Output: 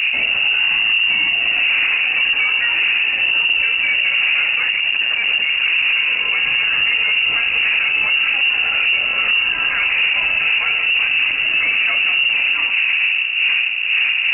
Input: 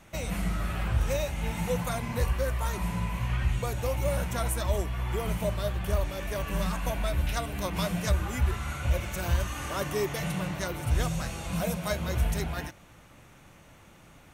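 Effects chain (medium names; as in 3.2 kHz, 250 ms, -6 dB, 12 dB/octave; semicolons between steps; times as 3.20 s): wind noise 350 Hz -28 dBFS; 0.59–1.35 s: comb 1.1 ms, depth 52%; hum 60 Hz, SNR 12 dB; saturation -25.5 dBFS, distortion -7 dB; distance through air 490 m; on a send at -6 dB: reverberation RT60 0.65 s, pre-delay 3 ms; 4.68–5.66 s: on the sum: LPC vocoder at 8 kHz pitch kept; frequency inversion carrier 2.8 kHz; loudness maximiser +23.5 dB; trim -8 dB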